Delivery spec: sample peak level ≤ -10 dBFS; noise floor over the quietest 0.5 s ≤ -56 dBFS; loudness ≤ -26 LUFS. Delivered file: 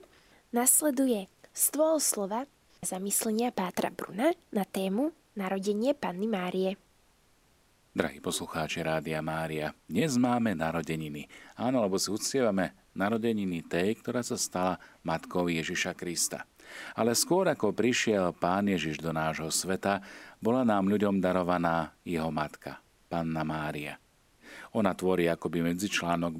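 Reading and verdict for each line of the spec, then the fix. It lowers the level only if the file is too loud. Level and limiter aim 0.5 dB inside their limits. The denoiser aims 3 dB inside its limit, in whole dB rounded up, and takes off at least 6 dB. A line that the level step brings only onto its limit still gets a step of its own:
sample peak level -7.5 dBFS: fail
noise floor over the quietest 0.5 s -66 dBFS: pass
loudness -30.0 LUFS: pass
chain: peak limiter -10.5 dBFS

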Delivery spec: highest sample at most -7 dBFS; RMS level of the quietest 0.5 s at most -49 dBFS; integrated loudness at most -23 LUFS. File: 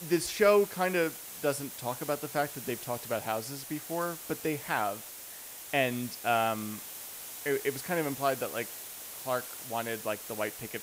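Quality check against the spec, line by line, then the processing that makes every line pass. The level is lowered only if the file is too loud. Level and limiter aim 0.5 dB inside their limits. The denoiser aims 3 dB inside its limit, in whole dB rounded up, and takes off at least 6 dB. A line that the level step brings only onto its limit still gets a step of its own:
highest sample -12.0 dBFS: pass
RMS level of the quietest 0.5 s -45 dBFS: fail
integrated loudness -32.0 LUFS: pass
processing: noise reduction 7 dB, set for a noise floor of -45 dBFS

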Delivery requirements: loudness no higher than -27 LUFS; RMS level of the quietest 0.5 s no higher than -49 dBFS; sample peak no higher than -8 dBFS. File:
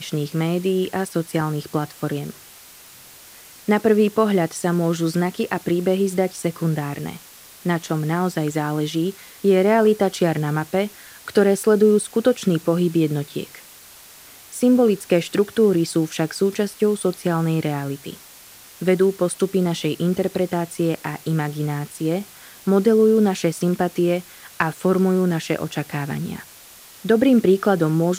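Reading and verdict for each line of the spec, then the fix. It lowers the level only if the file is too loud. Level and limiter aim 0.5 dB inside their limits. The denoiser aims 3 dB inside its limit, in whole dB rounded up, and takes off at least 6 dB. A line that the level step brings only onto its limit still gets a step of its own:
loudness -20.5 LUFS: fail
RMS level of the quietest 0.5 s -45 dBFS: fail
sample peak -3.0 dBFS: fail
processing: trim -7 dB

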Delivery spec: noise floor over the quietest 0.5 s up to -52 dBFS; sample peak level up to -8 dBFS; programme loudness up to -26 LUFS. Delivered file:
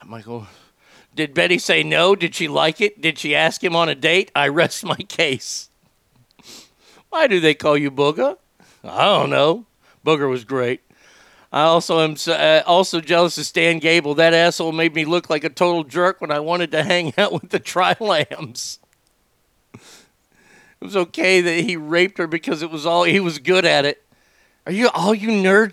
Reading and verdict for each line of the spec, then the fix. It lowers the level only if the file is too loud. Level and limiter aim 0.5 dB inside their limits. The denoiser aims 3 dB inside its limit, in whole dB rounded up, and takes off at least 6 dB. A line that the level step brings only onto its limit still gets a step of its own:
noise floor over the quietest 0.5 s -63 dBFS: pass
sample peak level -2.0 dBFS: fail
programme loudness -17.5 LUFS: fail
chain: trim -9 dB

